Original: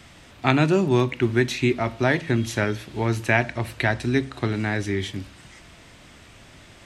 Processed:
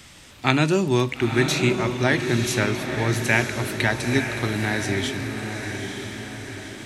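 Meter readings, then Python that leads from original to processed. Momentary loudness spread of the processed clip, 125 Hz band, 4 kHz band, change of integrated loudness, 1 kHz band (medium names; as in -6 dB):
11 LU, +0.5 dB, +5.0 dB, +0.5 dB, 0.0 dB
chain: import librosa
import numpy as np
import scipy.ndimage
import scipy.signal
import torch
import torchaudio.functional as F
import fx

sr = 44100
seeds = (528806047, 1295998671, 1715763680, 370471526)

p1 = fx.high_shelf(x, sr, hz=3700.0, db=10.0)
p2 = fx.notch(p1, sr, hz=690.0, q=12.0)
p3 = p2 + fx.echo_diffused(p2, sr, ms=937, feedback_pct=52, wet_db=-6, dry=0)
y = F.gain(torch.from_numpy(p3), -1.0).numpy()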